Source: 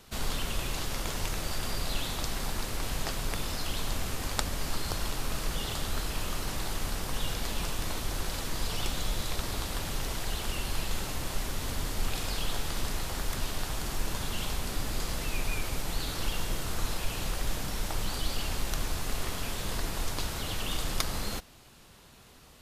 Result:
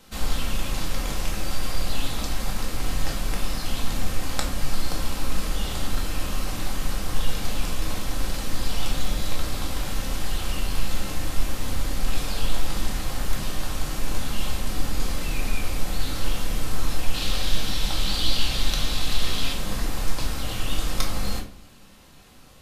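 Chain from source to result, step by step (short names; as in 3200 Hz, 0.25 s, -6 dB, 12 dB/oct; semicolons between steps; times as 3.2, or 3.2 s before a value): 17.14–19.53 bell 3700 Hz +12 dB 0.96 oct; shoebox room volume 420 m³, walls furnished, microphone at 2.1 m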